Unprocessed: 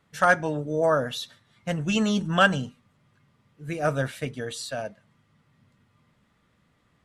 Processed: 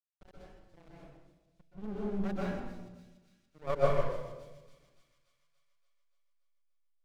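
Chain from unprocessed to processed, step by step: local Wiener filter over 41 samples; Doppler pass-by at 3.05 s, 23 m/s, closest 18 m; frequency weighting A; frequency shift -21 Hz; band-pass sweep 230 Hz -> 3.2 kHz, 2.58–6.09 s; hysteresis with a dead band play -39 dBFS; dynamic bell 240 Hz, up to +6 dB, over -54 dBFS, Q 0.81; half-wave rectifier; feedback echo behind a high-pass 287 ms, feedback 63%, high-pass 4.9 kHz, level -7 dB; reverberation RT60 1.2 s, pre-delay 119 ms, DRR -7 dB; trim +2 dB

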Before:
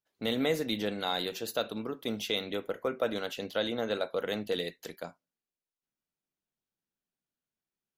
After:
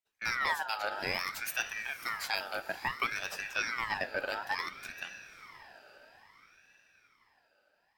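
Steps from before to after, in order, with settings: 1.08–3.50 s: treble shelf 8.5 kHz +8.5 dB; echo that smears into a reverb 532 ms, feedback 55%, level -13.5 dB; ring modulator with a swept carrier 1.6 kHz, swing 35%, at 0.59 Hz

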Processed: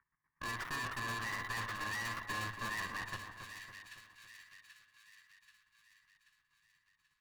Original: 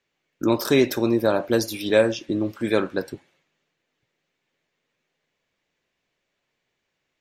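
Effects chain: bit-reversed sample order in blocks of 32 samples; peak limiter -15 dBFS, peak gain reduction 10.5 dB; treble shelf 2.4 kHz -10.5 dB; square tremolo 8.3 Hz, depth 65%, duty 25%; FFT filter 100 Hz 0 dB, 610 Hz -27 dB, 1.1 kHz +11 dB, 1.8 kHz +12 dB, 3.2 kHz -18 dB; valve stage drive 47 dB, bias 0.75; hum notches 50/100 Hz; two-band feedback delay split 1.7 kHz, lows 278 ms, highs 783 ms, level -7.5 dB; trim +9 dB

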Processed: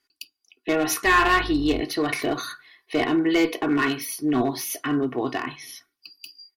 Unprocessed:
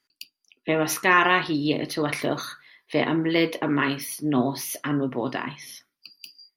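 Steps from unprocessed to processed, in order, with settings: 1.05–1.80 s: mains buzz 50 Hz, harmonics 27, -36 dBFS -8 dB/octave; one-sided clip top -17 dBFS; comb 2.7 ms, depth 65%

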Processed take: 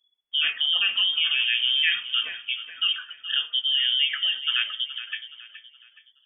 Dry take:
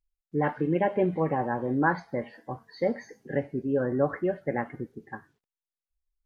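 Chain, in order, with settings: in parallel at -3 dB: compressor with a negative ratio -29 dBFS, ratio -0.5; on the sum: feedback delay 421 ms, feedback 38%, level -13 dB; frequency inversion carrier 3.4 kHz

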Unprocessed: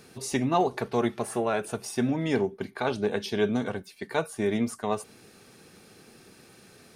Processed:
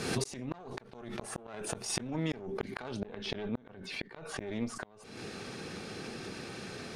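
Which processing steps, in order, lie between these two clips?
single-diode clipper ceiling -29.5 dBFS; low-pass 8.5 kHz 12 dB/octave, from 3.00 s 3.5 kHz, from 4.47 s 5.9 kHz; compression 16:1, threshold -39 dBFS, peak gain reduction 19.5 dB; inverted gate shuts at -32 dBFS, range -41 dB; swell ahead of each attack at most 50 dB/s; trim +11 dB

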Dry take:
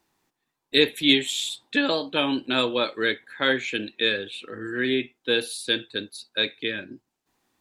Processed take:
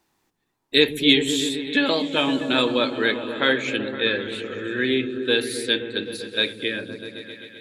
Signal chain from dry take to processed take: 3.76–4.29 s: distance through air 120 m; on a send: delay with an opening low-pass 129 ms, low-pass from 200 Hz, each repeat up 1 oct, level -3 dB; on the sum: trim +2 dB

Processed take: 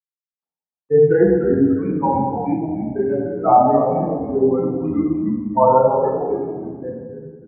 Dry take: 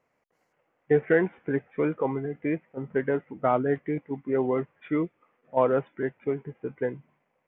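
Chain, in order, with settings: expander on every frequency bin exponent 3; hum notches 60/120/180 Hz; in parallel at +2.5 dB: peak limiter -23 dBFS, peak gain reduction 9.5 dB; on the sum: bit crusher 12-bit; resonant low-pass 850 Hz, resonance Q 4.9; frequency-shifting echo 294 ms, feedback 38%, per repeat -89 Hz, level -9 dB; reverberation RT60 1.4 s, pre-delay 3 ms, DRR -4 dB; trim -6.5 dB

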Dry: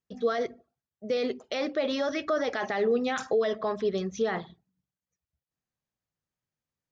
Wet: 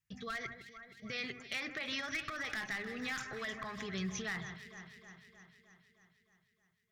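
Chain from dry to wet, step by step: peak limiter -23.5 dBFS, peak gain reduction 7 dB; graphic EQ 125/250/500/1000/2000/4000 Hz +8/-10/-12/+5/+10/-4 dB; one-sided clip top -26.5 dBFS; echo whose repeats swap between lows and highs 155 ms, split 2.1 kHz, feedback 78%, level -12 dB; compression, threshold -32 dBFS, peak gain reduction 6.5 dB; peaking EQ 850 Hz -12.5 dB 2.3 oct; trim +3 dB

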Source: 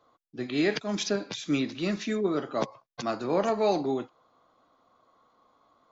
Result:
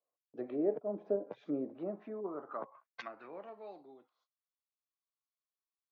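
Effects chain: low-pass that closes with the level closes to 630 Hz, closed at -26.5 dBFS; gate -58 dBFS, range -25 dB; band-pass sweep 560 Hz -> 5.4 kHz, 1.63–4.18 s; trim +2 dB

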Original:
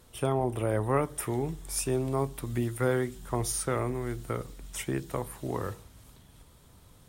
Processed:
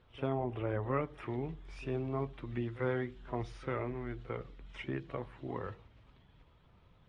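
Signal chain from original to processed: coarse spectral quantiser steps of 15 dB; four-pole ladder low-pass 3.5 kHz, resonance 30%; pre-echo 45 ms -17 dB

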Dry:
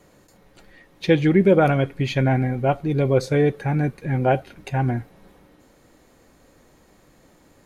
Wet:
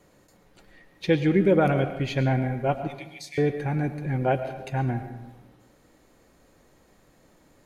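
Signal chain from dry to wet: 2.87–3.38 s: brick-wall FIR high-pass 1.7 kHz; reverberation RT60 1.0 s, pre-delay 70 ms, DRR 9.5 dB; trim -4.5 dB

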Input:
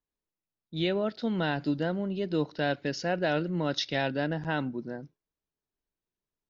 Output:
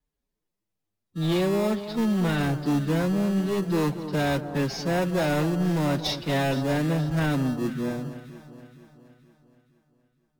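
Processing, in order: bass shelf 200 Hz +6.5 dB; in parallel at -5 dB: sample-rate reducer 1.5 kHz, jitter 0%; on the sum: vibrato 0.56 Hz 14 cents; time stretch by phase-locked vocoder 1.6×; saturation -22.5 dBFS, distortion -13 dB; on a send: echo whose repeats swap between lows and highs 235 ms, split 1.3 kHz, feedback 67%, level -11 dB; on the sum: trim +3.5 dB; MP3 96 kbps 48 kHz

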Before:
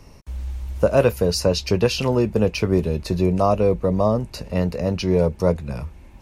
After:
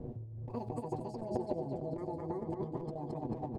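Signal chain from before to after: hum notches 60/120/180/240/300/360/420/480 Hz; feedback delay 382 ms, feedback 56%, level -5 dB; in parallel at -8.5 dB: word length cut 6-bit, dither triangular; on the sum: level-controlled noise filter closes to 510 Hz, open at -6 dBFS; inverted gate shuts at -8 dBFS, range -25 dB; doubling 14 ms -5 dB; one-sided clip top -21 dBFS; FFT filter 310 Hz 0 dB, 810 Hz -29 dB, 3 kHz -23 dB; speed mistake 45 rpm record played at 78 rpm; compressor with a negative ratio -35 dBFS, ratio -1; tilt EQ +1.5 dB/octave; on a send: delay 94 ms -19 dB; on the sum: trim +1 dB

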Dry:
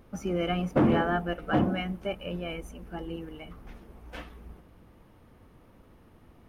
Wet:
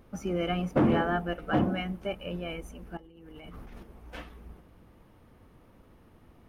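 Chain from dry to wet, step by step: 2.97–3.83 s: compressor with a negative ratio -47 dBFS, ratio -1; trim -1 dB

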